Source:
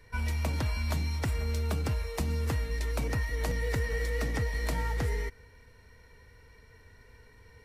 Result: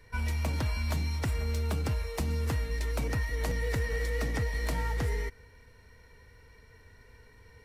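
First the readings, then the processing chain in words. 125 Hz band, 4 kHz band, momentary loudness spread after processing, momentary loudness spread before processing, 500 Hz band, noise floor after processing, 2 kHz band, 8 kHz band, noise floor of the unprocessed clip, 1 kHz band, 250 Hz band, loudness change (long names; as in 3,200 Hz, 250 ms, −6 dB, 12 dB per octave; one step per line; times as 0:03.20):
0.0 dB, 0.0 dB, 2 LU, 2 LU, 0.0 dB, −57 dBFS, 0.0 dB, −0.5 dB, −57 dBFS, −0.5 dB, 0.0 dB, 0.0 dB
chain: hard clipping −23.5 dBFS, distortion −27 dB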